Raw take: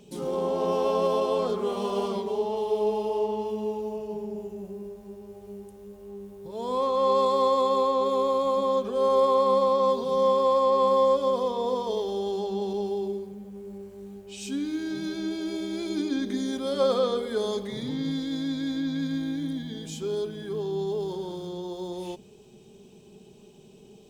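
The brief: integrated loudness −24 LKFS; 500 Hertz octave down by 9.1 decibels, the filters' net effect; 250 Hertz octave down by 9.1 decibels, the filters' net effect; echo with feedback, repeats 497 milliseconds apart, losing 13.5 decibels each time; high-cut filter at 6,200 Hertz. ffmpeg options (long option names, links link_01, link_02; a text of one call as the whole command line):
ffmpeg -i in.wav -af "lowpass=6200,equalizer=frequency=250:width_type=o:gain=-9,equalizer=frequency=500:width_type=o:gain=-8,aecho=1:1:497|994:0.211|0.0444,volume=8.5dB" out.wav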